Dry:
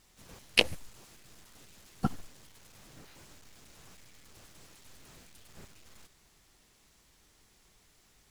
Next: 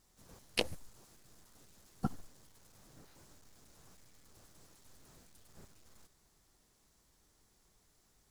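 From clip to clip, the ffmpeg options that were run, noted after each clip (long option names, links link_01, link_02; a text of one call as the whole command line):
ffmpeg -i in.wav -af "equalizer=frequency=2600:width=1.1:gain=-7.5,volume=-5dB" out.wav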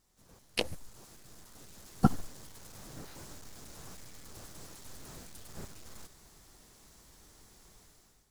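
ffmpeg -i in.wav -af "dynaudnorm=framelen=520:gausssize=3:maxgain=15dB,volume=-2.5dB" out.wav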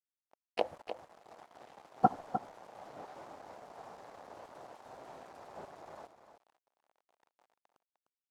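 ffmpeg -i in.wav -af "acrusher=bits=7:mix=0:aa=0.000001,bandpass=frequency=730:width_type=q:width=2.5:csg=0,aecho=1:1:303:0.335,volume=9dB" out.wav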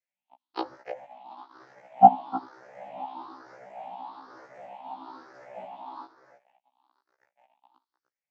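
ffmpeg -i in.wav -af "afftfilt=real='re*pow(10,19/40*sin(2*PI*(0.53*log(max(b,1)*sr/1024/100)/log(2)-(1.1)*(pts-256)/sr)))':imag='im*pow(10,19/40*sin(2*PI*(0.53*log(max(b,1)*sr/1024/100)/log(2)-(1.1)*(pts-256)/sr)))':win_size=1024:overlap=0.75,highpass=180,equalizer=frequency=280:width_type=q:width=4:gain=6,equalizer=frequency=440:width_type=q:width=4:gain=-9,equalizer=frequency=870:width_type=q:width=4:gain=8,lowpass=frequency=4900:width=0.5412,lowpass=frequency=4900:width=1.3066,afftfilt=real='re*1.73*eq(mod(b,3),0)':imag='im*1.73*eq(mod(b,3),0)':win_size=2048:overlap=0.75,volume=3.5dB" out.wav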